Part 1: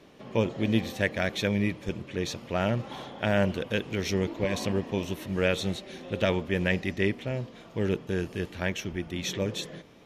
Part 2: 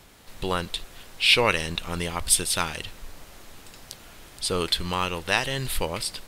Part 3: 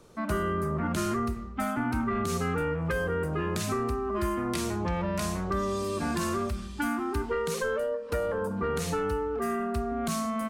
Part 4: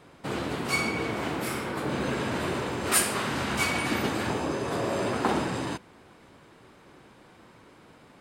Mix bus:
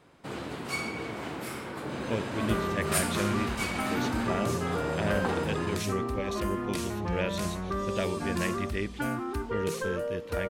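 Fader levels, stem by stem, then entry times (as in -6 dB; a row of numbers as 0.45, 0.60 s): -6.0 dB, off, -3.0 dB, -6.0 dB; 1.75 s, off, 2.20 s, 0.00 s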